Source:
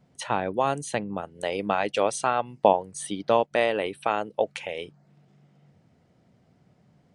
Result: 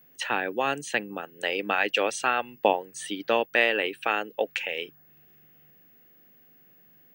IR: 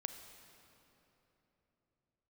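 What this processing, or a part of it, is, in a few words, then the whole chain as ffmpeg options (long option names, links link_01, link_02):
old television with a line whistle: -af "highpass=frequency=170:width=0.5412,highpass=frequency=170:width=1.3066,equalizer=frequency=190:width_type=q:width=4:gain=-9,equalizer=frequency=640:width_type=q:width=4:gain=-6,equalizer=frequency=1000:width_type=q:width=4:gain=-6,equalizer=frequency=1700:width_type=q:width=4:gain=10,equalizer=frequency=2700:width_type=q:width=4:gain=9,lowpass=frequency=8400:width=0.5412,lowpass=frequency=8400:width=1.3066,aeval=exprs='val(0)+0.00178*sin(2*PI*15625*n/s)':channel_layout=same"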